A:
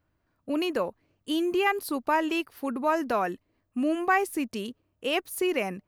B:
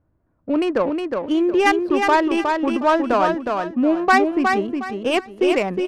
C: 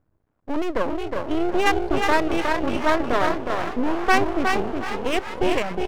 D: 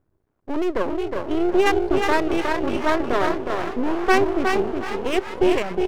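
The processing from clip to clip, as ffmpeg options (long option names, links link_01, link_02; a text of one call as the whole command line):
ffmpeg -i in.wav -filter_complex "[0:a]adynamicsmooth=sensitivity=2:basefreq=1000,asplit=2[link_01][link_02];[link_02]aecho=0:1:363|726|1089|1452:0.596|0.167|0.0467|0.0131[link_03];[link_01][link_03]amix=inputs=2:normalize=0,volume=8.5dB" out.wav
ffmpeg -i in.wav -filter_complex "[0:a]asplit=8[link_01][link_02][link_03][link_04][link_05][link_06][link_07][link_08];[link_02]adelay=391,afreqshift=59,volume=-11dB[link_09];[link_03]adelay=782,afreqshift=118,volume=-15.2dB[link_10];[link_04]adelay=1173,afreqshift=177,volume=-19.3dB[link_11];[link_05]adelay=1564,afreqshift=236,volume=-23.5dB[link_12];[link_06]adelay=1955,afreqshift=295,volume=-27.6dB[link_13];[link_07]adelay=2346,afreqshift=354,volume=-31.8dB[link_14];[link_08]adelay=2737,afreqshift=413,volume=-35.9dB[link_15];[link_01][link_09][link_10][link_11][link_12][link_13][link_14][link_15]amix=inputs=8:normalize=0,aeval=exprs='max(val(0),0)':channel_layout=same" out.wav
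ffmpeg -i in.wav -af "equalizer=frequency=380:width_type=o:width=0.27:gain=8,volume=-1dB" out.wav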